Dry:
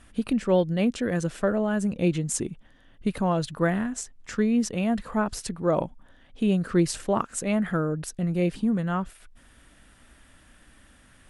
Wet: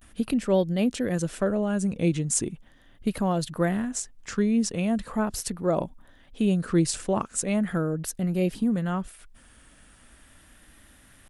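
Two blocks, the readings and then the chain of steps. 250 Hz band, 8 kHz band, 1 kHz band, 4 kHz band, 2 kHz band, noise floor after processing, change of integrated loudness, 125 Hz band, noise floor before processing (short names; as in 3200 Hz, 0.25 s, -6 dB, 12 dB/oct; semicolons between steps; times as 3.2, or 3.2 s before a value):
0.0 dB, +3.5 dB, -2.5 dB, +1.0 dB, -2.5 dB, -56 dBFS, 0.0 dB, 0.0 dB, -56 dBFS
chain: dynamic EQ 1400 Hz, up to -4 dB, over -36 dBFS, Q 0.75; vibrato 0.39 Hz 60 cents; high shelf 8600 Hz +8.5 dB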